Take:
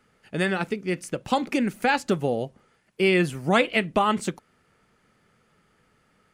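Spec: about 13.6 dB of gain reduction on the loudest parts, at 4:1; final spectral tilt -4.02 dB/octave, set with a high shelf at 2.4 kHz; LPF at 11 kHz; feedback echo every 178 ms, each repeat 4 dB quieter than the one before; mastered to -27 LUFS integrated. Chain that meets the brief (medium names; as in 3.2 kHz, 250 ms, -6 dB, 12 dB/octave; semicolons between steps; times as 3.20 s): low-pass 11 kHz; treble shelf 2.4 kHz +8 dB; compression 4:1, threshold -31 dBFS; feedback delay 178 ms, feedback 63%, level -4 dB; trim +5.5 dB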